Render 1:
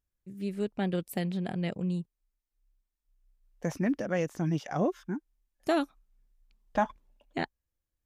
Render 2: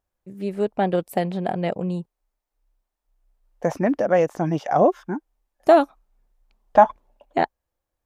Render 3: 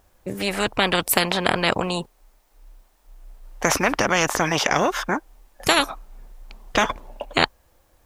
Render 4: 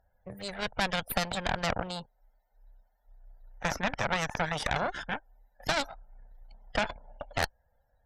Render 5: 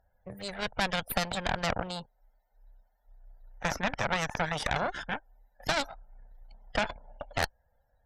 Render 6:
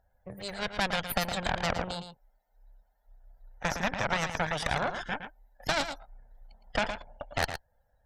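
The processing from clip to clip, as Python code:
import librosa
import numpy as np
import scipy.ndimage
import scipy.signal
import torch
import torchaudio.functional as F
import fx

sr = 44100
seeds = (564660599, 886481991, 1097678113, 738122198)

y1 = fx.peak_eq(x, sr, hz=720.0, db=14.0, octaves=1.9)
y1 = y1 * 10.0 ** (2.0 / 20.0)
y2 = fx.spectral_comp(y1, sr, ratio=4.0)
y3 = fx.spec_topn(y2, sr, count=64)
y3 = fx.fixed_phaser(y3, sr, hz=1700.0, stages=8)
y3 = fx.cheby_harmonics(y3, sr, harmonics=(6, 8), levels_db=(-8, -22), full_scale_db=-6.5)
y3 = y3 * 10.0 ** (-9.0 / 20.0)
y4 = y3
y5 = y4 + 10.0 ** (-9.0 / 20.0) * np.pad(y4, (int(113 * sr / 1000.0), 0))[:len(y4)]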